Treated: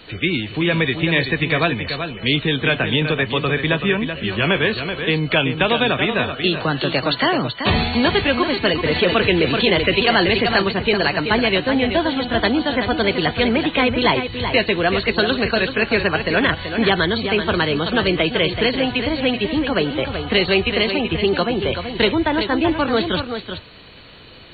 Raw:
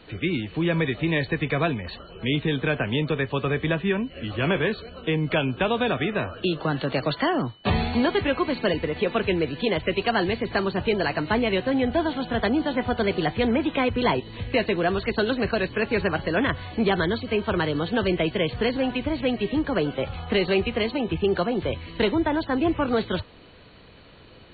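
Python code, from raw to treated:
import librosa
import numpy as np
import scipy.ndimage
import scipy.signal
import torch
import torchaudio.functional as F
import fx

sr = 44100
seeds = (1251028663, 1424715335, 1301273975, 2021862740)

y = fx.high_shelf(x, sr, hz=2000.0, db=9.5)
y = y + 10.0 ** (-8.0 / 20.0) * np.pad(y, (int(381 * sr / 1000.0), 0))[:len(y)]
y = fx.env_flatten(y, sr, amount_pct=50, at=(8.85, 10.62))
y = y * 10.0 ** (3.5 / 20.0)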